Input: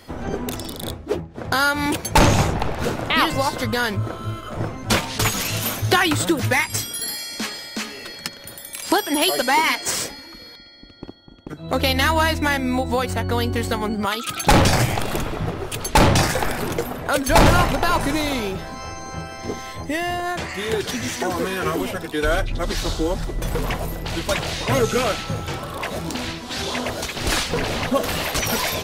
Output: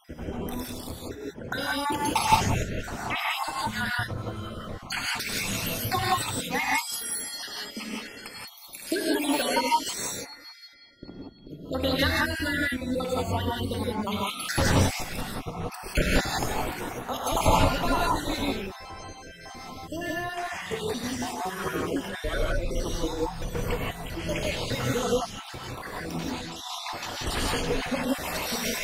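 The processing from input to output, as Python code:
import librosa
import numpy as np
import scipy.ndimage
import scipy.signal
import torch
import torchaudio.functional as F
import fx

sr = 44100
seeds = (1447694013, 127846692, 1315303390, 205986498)

y = fx.spec_dropout(x, sr, seeds[0], share_pct=61)
y = fx.rev_gated(y, sr, seeds[1], gate_ms=200, shape='rising', drr_db=-4.0)
y = F.gain(torch.from_numpy(y), -8.0).numpy()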